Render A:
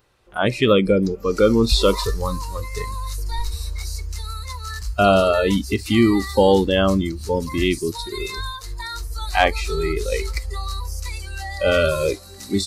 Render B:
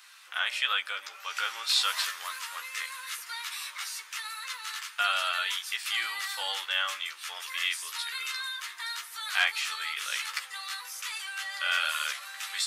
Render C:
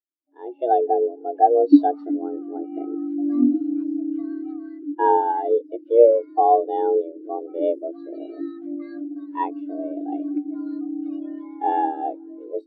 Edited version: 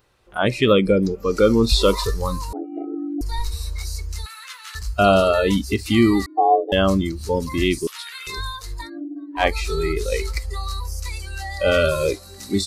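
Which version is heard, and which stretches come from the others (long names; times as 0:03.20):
A
0:02.53–0:03.21: punch in from C
0:04.26–0:04.75: punch in from B
0:06.26–0:06.72: punch in from C
0:07.87–0:08.27: punch in from B
0:08.85–0:09.41: punch in from C, crossfade 0.10 s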